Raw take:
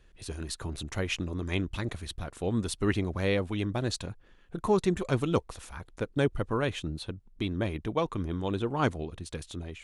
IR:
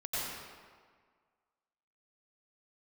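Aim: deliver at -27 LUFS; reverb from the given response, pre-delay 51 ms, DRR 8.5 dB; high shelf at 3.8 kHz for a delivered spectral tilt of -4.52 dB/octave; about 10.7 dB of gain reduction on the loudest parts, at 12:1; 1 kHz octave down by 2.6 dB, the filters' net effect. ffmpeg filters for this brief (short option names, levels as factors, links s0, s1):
-filter_complex "[0:a]equalizer=f=1000:t=o:g=-4,highshelf=f=3800:g=8.5,acompressor=threshold=0.0282:ratio=12,asplit=2[s0][s1];[1:a]atrim=start_sample=2205,adelay=51[s2];[s1][s2]afir=irnorm=-1:irlink=0,volume=0.211[s3];[s0][s3]amix=inputs=2:normalize=0,volume=2.99"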